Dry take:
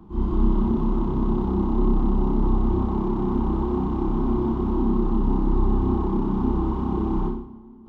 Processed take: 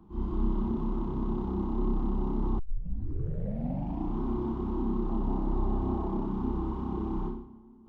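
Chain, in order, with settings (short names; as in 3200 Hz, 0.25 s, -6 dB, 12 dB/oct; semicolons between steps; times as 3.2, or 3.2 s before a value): 2.59 tape start 1.59 s; 5.09–6.26 bell 650 Hz +11 dB 0.42 oct; gain -8.5 dB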